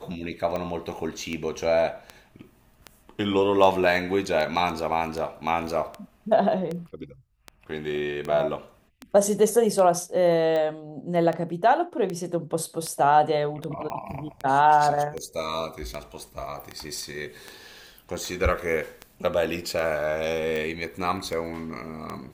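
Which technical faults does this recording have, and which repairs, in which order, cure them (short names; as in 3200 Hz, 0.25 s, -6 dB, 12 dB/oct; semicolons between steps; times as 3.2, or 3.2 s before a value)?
tick 78 rpm -18 dBFS
13.9 pop -20 dBFS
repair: de-click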